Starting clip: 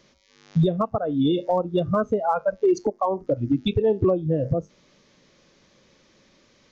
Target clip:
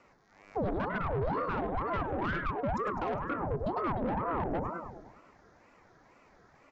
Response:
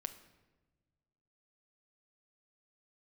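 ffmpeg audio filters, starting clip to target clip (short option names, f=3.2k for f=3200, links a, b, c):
-filter_complex "[0:a]highshelf=f=2k:t=q:w=3:g=-10.5,bandreject=f=60:t=h:w=6,bandreject=f=120:t=h:w=6,bandreject=f=180:t=h:w=6,bandreject=f=240:t=h:w=6,bandreject=f=300:t=h:w=6,bandreject=f=360:t=h:w=6,bandreject=f=420:t=h:w=6,bandreject=f=480:t=h:w=6,bandreject=f=540:t=h:w=6,bandreject=f=600:t=h:w=6,aecho=1:1:3.4:0.33,acrossover=split=540|760[a][b][c];[c]acompressor=threshold=-37dB:ratio=6[d];[a][b][d]amix=inputs=3:normalize=0,alimiter=limit=-17.5dB:level=0:latency=1:release=81,aecho=1:1:102|204|306|408|510|612|714:0.447|0.259|0.15|0.0872|0.0505|0.0293|0.017,asoftclip=type=tanh:threshold=-25.5dB,aeval=exprs='val(0)*sin(2*PI*490*n/s+490*0.75/2.1*sin(2*PI*2.1*n/s))':c=same"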